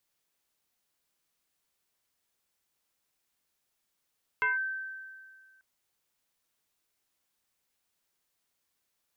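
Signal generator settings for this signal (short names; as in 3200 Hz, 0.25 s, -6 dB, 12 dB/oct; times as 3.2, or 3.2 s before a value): FM tone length 1.19 s, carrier 1550 Hz, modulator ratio 0.36, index 1.2, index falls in 0.16 s linear, decay 1.91 s, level -23 dB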